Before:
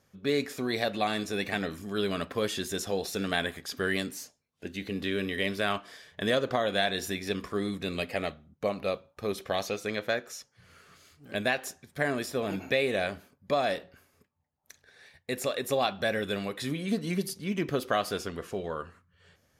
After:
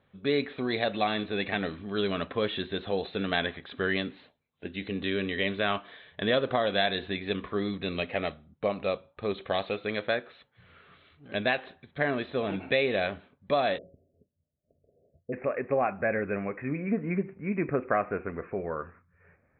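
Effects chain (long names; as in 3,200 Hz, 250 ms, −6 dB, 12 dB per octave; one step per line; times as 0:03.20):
Chebyshev low-pass filter 4,000 Hz, order 8, from 0:13.77 680 Hz, from 0:15.32 2,500 Hz
level +1.5 dB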